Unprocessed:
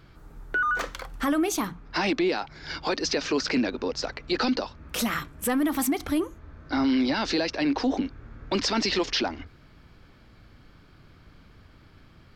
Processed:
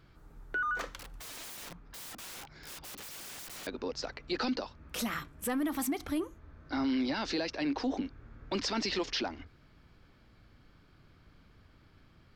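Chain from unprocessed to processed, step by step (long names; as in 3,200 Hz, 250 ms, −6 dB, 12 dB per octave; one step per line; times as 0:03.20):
0:00.99–0:03.67: wrap-around overflow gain 33 dB
level −7.5 dB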